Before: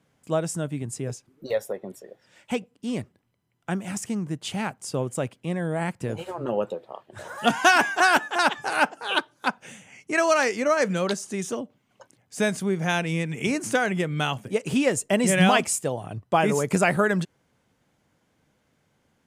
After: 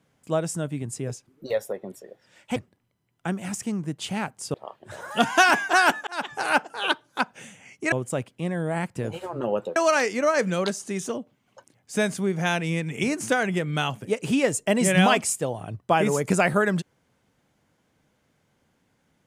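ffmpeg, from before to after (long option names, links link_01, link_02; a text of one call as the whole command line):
ffmpeg -i in.wav -filter_complex "[0:a]asplit=6[link_01][link_02][link_03][link_04][link_05][link_06];[link_01]atrim=end=2.562[link_07];[link_02]atrim=start=2.988:end=4.972[link_08];[link_03]atrim=start=6.808:end=8.34,asetpts=PTS-STARTPTS,afade=type=out:start_time=1.528:duration=0.004:curve=hsin[link_09];[link_04]atrim=start=8.34:end=10.192,asetpts=PTS-STARTPTS,afade=type=in:duration=0.32[link_10];[link_05]atrim=start=4.968:end=6.812[link_11];[link_06]atrim=start=10.188[link_12];[link_07][link_08]acrossfade=duration=0.004:curve1=hsin:curve2=hsin[link_13];[link_09][link_10]concat=n=2:v=0:a=1[link_14];[link_13][link_14]acrossfade=duration=0.004:curve1=hsin:curve2=hsin[link_15];[link_15][link_11]acrossfade=duration=0.004:curve1=hsin:curve2=hsin[link_16];[link_16][link_12]acrossfade=duration=0.004:curve1=hsin:curve2=hsin" out.wav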